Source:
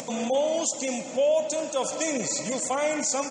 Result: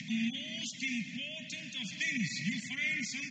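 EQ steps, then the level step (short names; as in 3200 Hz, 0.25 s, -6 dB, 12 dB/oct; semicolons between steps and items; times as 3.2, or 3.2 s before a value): inverse Chebyshev band-stop 340–1300 Hz, stop band 40 dB; air absorption 270 m; speaker cabinet 140–7700 Hz, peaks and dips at 660 Hz +5 dB, 980 Hz +6 dB, 1900 Hz +7 dB; +5.5 dB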